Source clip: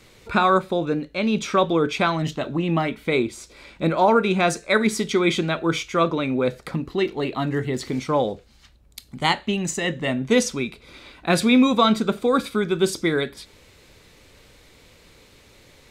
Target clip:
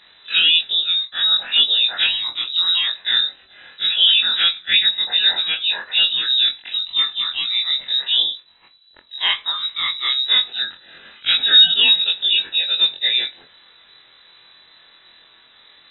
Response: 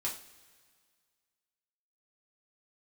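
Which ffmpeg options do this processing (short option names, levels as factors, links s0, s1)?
-filter_complex "[0:a]afftfilt=real='re':imag='-im':win_size=2048:overlap=0.75,acrossover=split=3000[s0][s1];[s1]acompressor=threshold=0.00501:ratio=4:attack=1:release=60[s2];[s0][s2]amix=inputs=2:normalize=0,lowpass=f=3400:t=q:w=0.5098,lowpass=f=3400:t=q:w=0.6013,lowpass=f=3400:t=q:w=0.9,lowpass=f=3400:t=q:w=2.563,afreqshift=-4000,volume=2.24"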